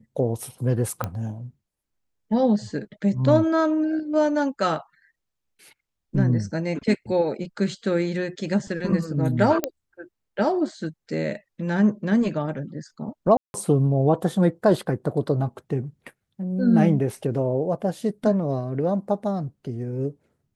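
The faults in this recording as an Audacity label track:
1.040000	1.040000	pop -13 dBFS
9.640000	9.640000	pop -8 dBFS
13.370000	13.540000	dropout 171 ms

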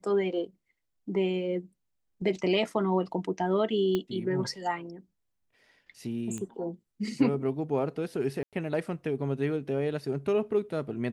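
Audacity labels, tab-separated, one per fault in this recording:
3.950000	3.950000	pop -16 dBFS
6.380000	6.380000	pop -25 dBFS
8.430000	8.530000	dropout 97 ms

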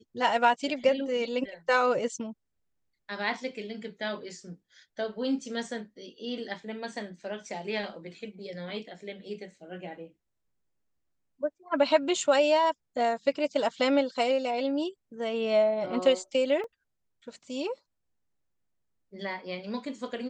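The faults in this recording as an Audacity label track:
16.640000	16.640000	dropout 2.1 ms

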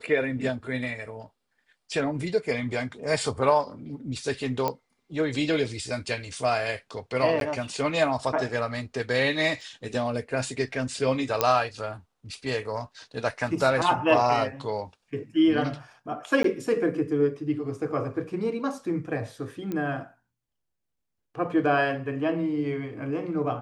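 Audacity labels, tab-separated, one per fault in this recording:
4.680000	4.680000	pop -13 dBFS
7.400000	7.410000	dropout 12 ms
9.610000	9.610000	dropout 2.4 ms
11.410000	11.410000	pop -6 dBFS
16.430000	16.440000	dropout 13 ms
19.720000	19.720000	pop -19 dBFS

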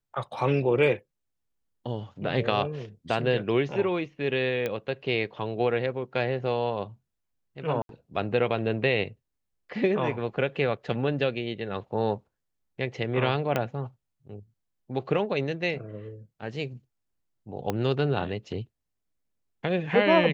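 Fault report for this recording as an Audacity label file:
4.660000	4.660000	pop -16 dBFS
7.820000	7.890000	dropout 72 ms
13.560000	13.560000	pop -13 dBFS
17.700000	17.700000	pop -14 dBFS

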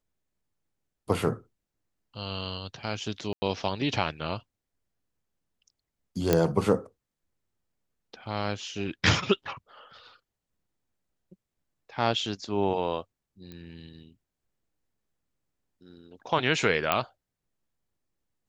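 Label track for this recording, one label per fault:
3.330000	3.420000	dropout 90 ms
6.330000	6.330000	pop -7 dBFS
13.520000	13.520000	pop -29 dBFS
16.920000	16.920000	pop -9 dBFS

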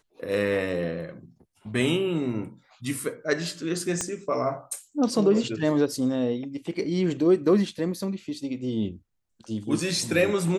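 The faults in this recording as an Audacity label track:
4.010000	4.010000	pop -13 dBFS

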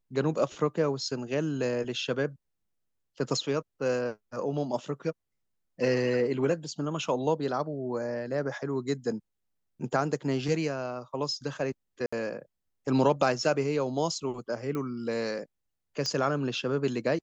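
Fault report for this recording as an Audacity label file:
12.060000	12.120000	dropout 65 ms
14.750000	14.750000	pop -22 dBFS
16.060000	16.060000	pop -19 dBFS

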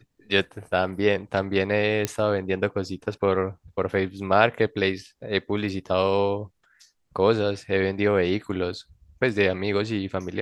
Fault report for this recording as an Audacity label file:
2.050000	2.050000	pop -8 dBFS

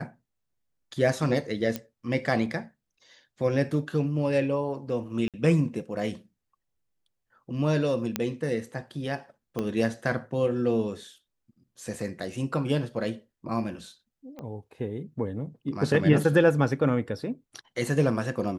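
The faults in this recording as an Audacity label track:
1.760000	1.760000	pop -15 dBFS
5.280000	5.340000	dropout 57 ms
8.160000	8.160000	pop -10 dBFS
9.590000	9.590000	pop -17 dBFS
14.390000	14.390000	pop -27 dBFS

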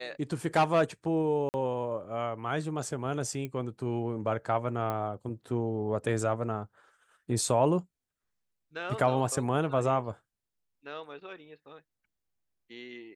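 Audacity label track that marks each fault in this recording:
1.490000	1.540000	dropout 49 ms
3.450000	3.450000	pop -23 dBFS
4.900000	4.900000	pop -20 dBFS

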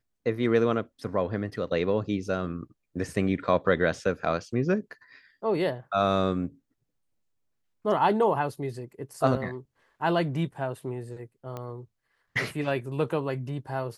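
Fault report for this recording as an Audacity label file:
11.570000	11.570000	pop -23 dBFS

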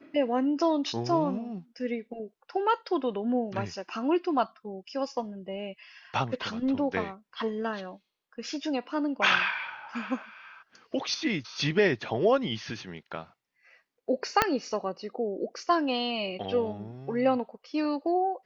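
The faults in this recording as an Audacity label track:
14.420000	14.420000	pop -6 dBFS

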